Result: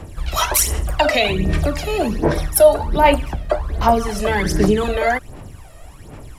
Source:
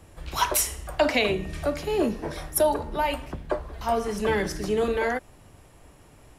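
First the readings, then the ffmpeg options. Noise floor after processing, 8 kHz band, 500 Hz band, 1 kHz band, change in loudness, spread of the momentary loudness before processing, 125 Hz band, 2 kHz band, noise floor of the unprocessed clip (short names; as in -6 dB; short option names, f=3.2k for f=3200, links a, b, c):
-39 dBFS, +8.0 dB, +8.0 dB, +9.0 dB, +8.5 dB, 9 LU, +13.5 dB, +7.5 dB, -53 dBFS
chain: -filter_complex "[0:a]asplit=2[a][b];[b]alimiter=limit=-21dB:level=0:latency=1:release=105,volume=-2dB[c];[a][c]amix=inputs=2:normalize=0,aphaser=in_gain=1:out_gain=1:delay=1.6:decay=0.67:speed=1.3:type=sinusoidal,volume=2.5dB"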